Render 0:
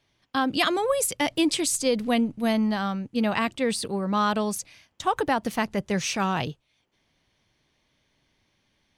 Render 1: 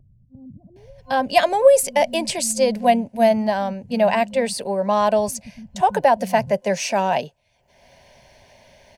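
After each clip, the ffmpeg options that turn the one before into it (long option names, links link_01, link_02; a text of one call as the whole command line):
ffmpeg -i in.wav -filter_complex "[0:a]superequalizer=6b=0.355:8b=3.55:9b=1.78:10b=0.355:13b=0.562,acrossover=split=170[link_01][link_02];[link_02]adelay=760[link_03];[link_01][link_03]amix=inputs=2:normalize=0,acompressor=mode=upward:threshold=-40dB:ratio=2.5,volume=3dB" out.wav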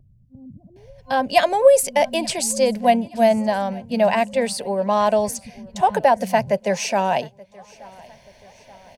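ffmpeg -i in.wav -af "aecho=1:1:878|1756|2634:0.0631|0.0328|0.0171" out.wav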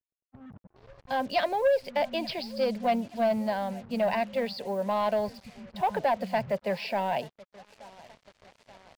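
ffmpeg -i in.wav -af "aresample=11025,asoftclip=type=tanh:threshold=-10.5dB,aresample=44100,acrusher=bits=6:mix=0:aa=0.5,volume=-7.5dB" out.wav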